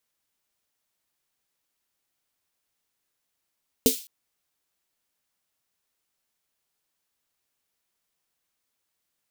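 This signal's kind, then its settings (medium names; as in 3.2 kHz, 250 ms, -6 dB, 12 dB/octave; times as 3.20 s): snare drum length 0.21 s, tones 260 Hz, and 450 Hz, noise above 3 kHz, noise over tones -5 dB, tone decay 0.13 s, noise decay 0.39 s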